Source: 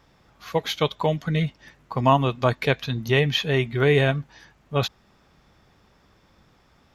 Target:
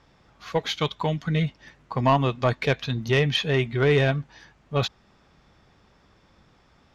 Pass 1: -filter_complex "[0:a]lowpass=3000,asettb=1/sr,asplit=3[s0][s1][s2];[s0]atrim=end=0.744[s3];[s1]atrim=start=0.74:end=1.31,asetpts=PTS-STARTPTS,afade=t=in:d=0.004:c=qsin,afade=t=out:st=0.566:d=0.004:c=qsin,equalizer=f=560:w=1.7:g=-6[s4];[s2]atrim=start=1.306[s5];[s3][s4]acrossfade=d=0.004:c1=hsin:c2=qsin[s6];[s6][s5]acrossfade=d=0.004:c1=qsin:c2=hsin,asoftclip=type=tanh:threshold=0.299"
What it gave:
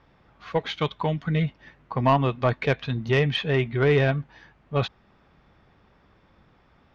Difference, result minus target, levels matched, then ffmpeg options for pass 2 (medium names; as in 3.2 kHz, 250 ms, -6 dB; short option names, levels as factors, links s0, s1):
8 kHz band -10.0 dB
-filter_complex "[0:a]lowpass=7700,asettb=1/sr,asplit=3[s0][s1][s2];[s0]atrim=end=0.744[s3];[s1]atrim=start=0.74:end=1.31,asetpts=PTS-STARTPTS,afade=t=in:d=0.004:c=qsin,afade=t=out:st=0.566:d=0.004:c=qsin,equalizer=f=560:w=1.7:g=-6[s4];[s2]atrim=start=1.306[s5];[s3][s4]acrossfade=d=0.004:c1=hsin:c2=qsin[s6];[s6][s5]acrossfade=d=0.004:c1=qsin:c2=hsin,asoftclip=type=tanh:threshold=0.299"